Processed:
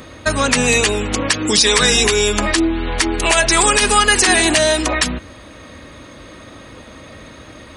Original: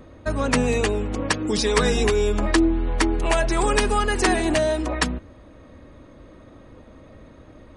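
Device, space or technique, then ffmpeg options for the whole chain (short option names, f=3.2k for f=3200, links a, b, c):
mastering chain: -af "highpass=44,equalizer=f=150:t=o:w=2.3:g=2.5,acompressor=threshold=-25dB:ratio=1.5,tiltshelf=f=1.3k:g=-9,alimiter=level_in=14.5dB:limit=-1dB:release=50:level=0:latency=1,volume=-1dB"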